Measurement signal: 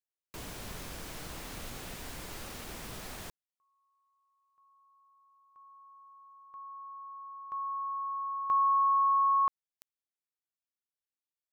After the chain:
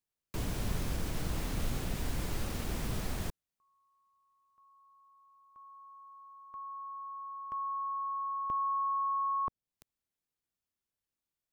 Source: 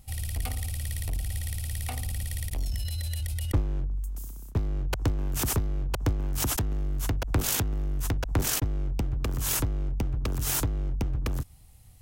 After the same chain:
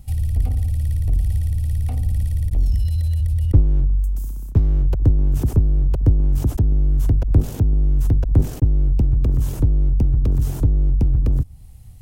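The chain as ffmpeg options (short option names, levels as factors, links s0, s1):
-filter_complex "[0:a]lowshelf=f=300:g=11.5,acrossover=split=700[s0][s1];[s1]acompressor=threshold=0.0141:ratio=6:attack=0.21:release=745:knee=1:detection=peak[s2];[s0][s2]amix=inputs=2:normalize=0,volume=1.19"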